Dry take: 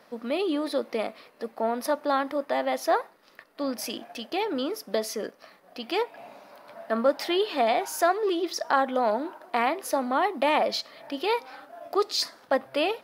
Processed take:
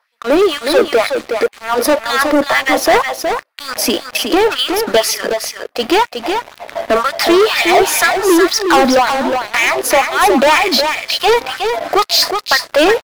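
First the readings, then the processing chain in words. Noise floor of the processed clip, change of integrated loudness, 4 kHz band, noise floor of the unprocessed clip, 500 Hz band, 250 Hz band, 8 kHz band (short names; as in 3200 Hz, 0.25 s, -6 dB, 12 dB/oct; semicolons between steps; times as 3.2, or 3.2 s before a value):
-45 dBFS, +14.0 dB, +17.5 dB, -58 dBFS, +13.5 dB, +14.0 dB, +19.0 dB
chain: LFO high-pass sine 2 Hz 260–2500 Hz; sample leveller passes 5; echo 0.366 s -6 dB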